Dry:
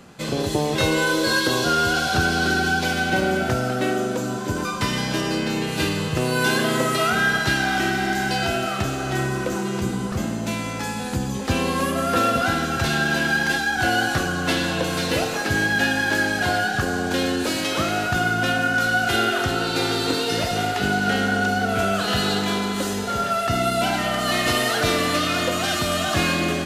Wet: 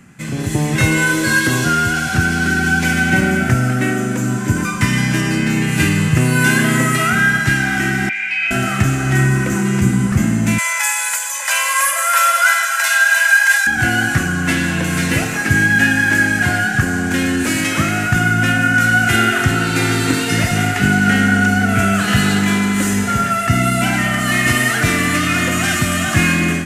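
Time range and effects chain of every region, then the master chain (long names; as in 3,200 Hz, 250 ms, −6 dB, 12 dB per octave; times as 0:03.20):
0:08.09–0:08.51: low-pass with resonance 2,400 Hz, resonance Q 14 + first difference
0:10.58–0:13.67: Butterworth high-pass 580 Hz 96 dB per octave + high-shelf EQ 6,500 Hz +7.5 dB + comb filter 2 ms, depth 89%
whole clip: octave-band graphic EQ 125/250/500/1,000/2,000/4,000/8,000 Hz +7/+4/−10/−4/+9/−11/+6 dB; automatic gain control; level −1 dB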